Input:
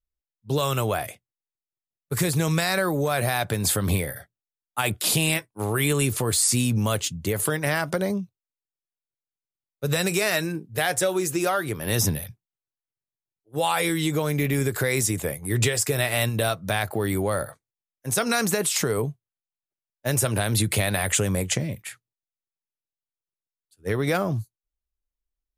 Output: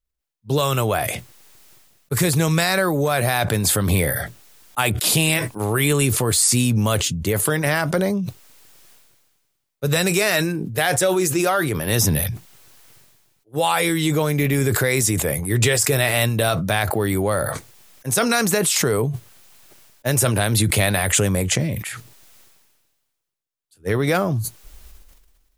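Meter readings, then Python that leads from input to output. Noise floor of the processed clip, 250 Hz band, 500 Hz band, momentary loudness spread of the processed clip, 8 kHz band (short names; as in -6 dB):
-74 dBFS, +5.0 dB, +4.5 dB, 9 LU, +4.5 dB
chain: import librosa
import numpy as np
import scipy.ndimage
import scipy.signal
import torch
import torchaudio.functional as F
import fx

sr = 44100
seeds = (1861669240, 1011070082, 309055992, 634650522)

y = fx.sustainer(x, sr, db_per_s=37.0)
y = F.gain(torch.from_numpy(y), 4.0).numpy()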